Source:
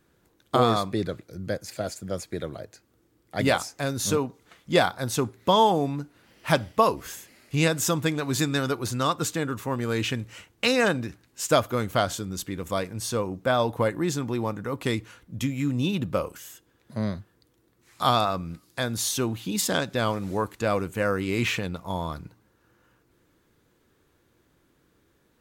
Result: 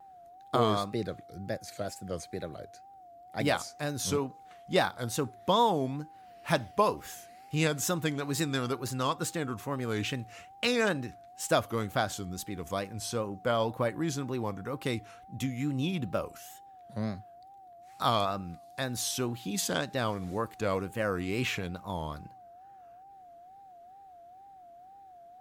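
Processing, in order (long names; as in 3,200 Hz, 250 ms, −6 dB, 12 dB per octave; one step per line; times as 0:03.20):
steady tone 740 Hz −44 dBFS
tape wow and flutter 120 cents
level −5.5 dB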